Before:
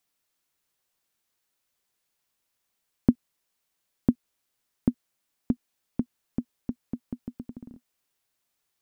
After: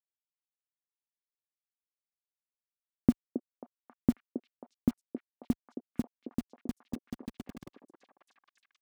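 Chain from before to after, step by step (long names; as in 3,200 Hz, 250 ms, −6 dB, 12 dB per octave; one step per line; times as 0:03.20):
hold until the input has moved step −35 dBFS
high-pass filter 41 Hz 6 dB per octave
echo through a band-pass that steps 270 ms, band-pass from 440 Hz, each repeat 0.7 octaves, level −3 dB
level −3 dB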